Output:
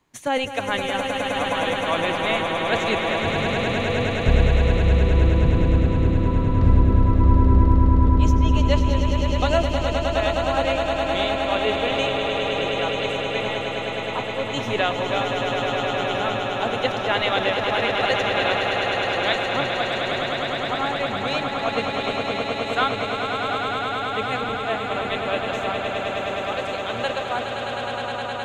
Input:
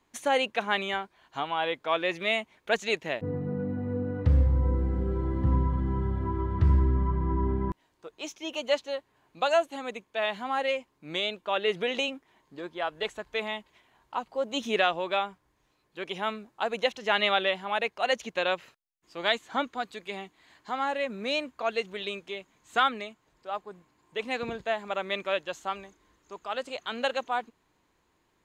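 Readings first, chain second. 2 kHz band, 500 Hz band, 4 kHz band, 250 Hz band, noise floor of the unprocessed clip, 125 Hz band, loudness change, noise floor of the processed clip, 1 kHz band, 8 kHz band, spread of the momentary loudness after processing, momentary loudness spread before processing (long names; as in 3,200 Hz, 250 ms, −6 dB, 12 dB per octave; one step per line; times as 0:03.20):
+7.5 dB, +7.5 dB, +7.0 dB, +10.0 dB, −72 dBFS, +9.5 dB, +7.5 dB, −28 dBFS, +7.5 dB, +7.5 dB, 8 LU, 12 LU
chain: sub-octave generator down 1 octave, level 0 dB
on a send: echo that builds up and dies away 104 ms, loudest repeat 8, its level −7 dB
on the sum: level +1.5 dB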